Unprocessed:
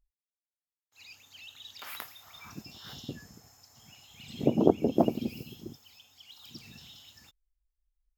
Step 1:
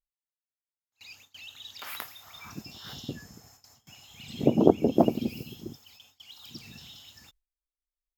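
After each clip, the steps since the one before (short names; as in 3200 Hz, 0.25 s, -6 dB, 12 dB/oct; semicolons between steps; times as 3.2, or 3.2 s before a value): gate with hold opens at -46 dBFS; gain +3 dB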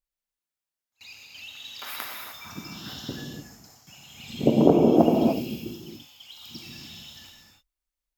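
non-linear reverb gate 0.33 s flat, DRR -0.5 dB; gain +1.5 dB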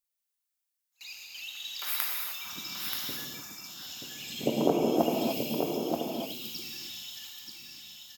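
tilt +3 dB/oct; echo 0.931 s -5.5 dB; gain -4 dB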